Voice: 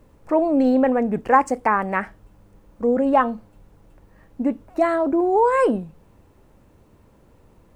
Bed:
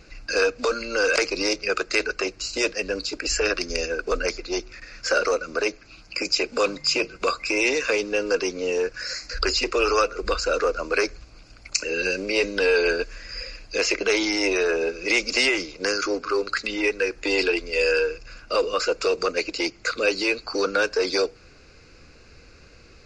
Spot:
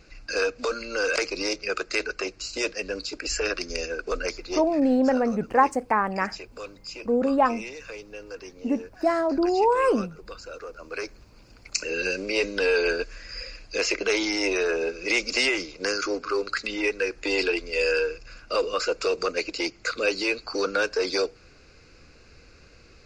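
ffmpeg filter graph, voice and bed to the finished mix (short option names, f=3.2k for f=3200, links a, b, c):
-filter_complex "[0:a]adelay=4250,volume=-3.5dB[a];[1:a]volume=10dB,afade=t=out:st=4.75:d=0.22:silence=0.237137,afade=t=in:st=10.7:d=1.19:silence=0.199526[b];[a][b]amix=inputs=2:normalize=0"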